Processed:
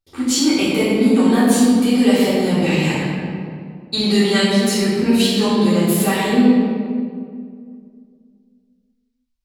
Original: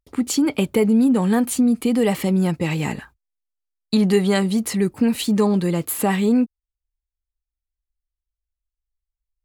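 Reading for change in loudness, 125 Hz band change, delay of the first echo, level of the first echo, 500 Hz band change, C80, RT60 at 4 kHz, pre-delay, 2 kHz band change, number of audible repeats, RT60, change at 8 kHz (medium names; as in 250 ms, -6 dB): +3.5 dB, +2.0 dB, no echo, no echo, +3.5 dB, 0.0 dB, 1.2 s, 3 ms, +7.0 dB, no echo, 2.2 s, +4.5 dB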